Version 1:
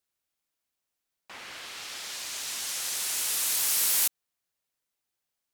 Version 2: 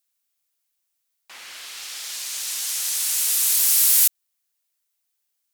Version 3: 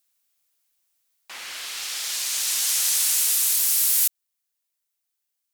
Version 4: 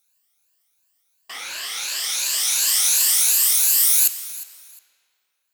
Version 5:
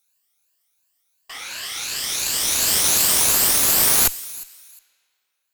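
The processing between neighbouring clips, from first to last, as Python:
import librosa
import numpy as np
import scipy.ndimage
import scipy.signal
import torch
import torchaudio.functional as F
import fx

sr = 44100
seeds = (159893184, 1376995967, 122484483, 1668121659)

y1 = fx.tilt_eq(x, sr, slope=3.0)
y1 = y1 * 10.0 ** (-1.5 / 20.0)
y2 = fx.rider(y1, sr, range_db=4, speed_s=0.5)
y3 = fx.spec_ripple(y2, sr, per_octave=1.4, drift_hz=2.8, depth_db=12)
y3 = fx.echo_feedback(y3, sr, ms=357, feedback_pct=23, wet_db=-17.0)
y3 = fx.rev_freeverb(y3, sr, rt60_s=2.5, hf_ratio=0.8, predelay_ms=5, drr_db=13.0)
y3 = y3 * 10.0 ** (2.0 / 20.0)
y4 = fx.cheby_harmonics(y3, sr, harmonics=(2, 6), levels_db=(-8, -16), full_scale_db=-2.0)
y4 = y4 * 10.0 ** (-1.0 / 20.0)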